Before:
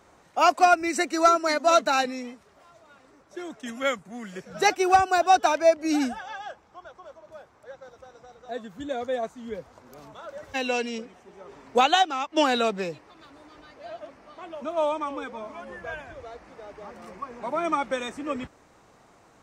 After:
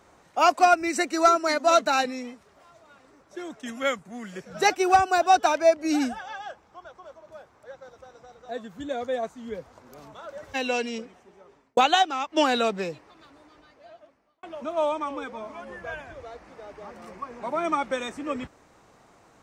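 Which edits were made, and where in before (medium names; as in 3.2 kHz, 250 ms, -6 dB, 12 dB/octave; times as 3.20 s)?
11.00–11.77 s: fade out linear
12.87–14.43 s: fade out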